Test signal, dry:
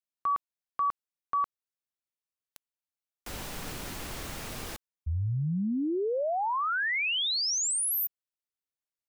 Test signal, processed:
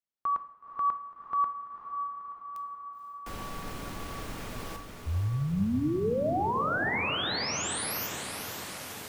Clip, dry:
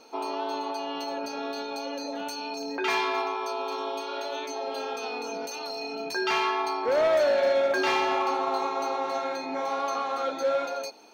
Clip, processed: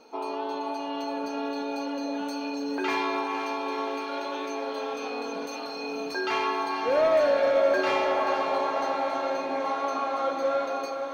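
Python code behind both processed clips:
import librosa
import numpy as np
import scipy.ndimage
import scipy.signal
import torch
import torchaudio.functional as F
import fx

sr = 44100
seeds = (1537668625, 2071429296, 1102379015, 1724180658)

p1 = fx.high_shelf(x, sr, hz=2700.0, db=-8.0)
p2 = p1 + fx.echo_diffused(p1, sr, ms=505, feedback_pct=70, wet_db=-7.5, dry=0)
y = fx.rev_double_slope(p2, sr, seeds[0], early_s=0.58, late_s=2.6, knee_db=-14, drr_db=9.0)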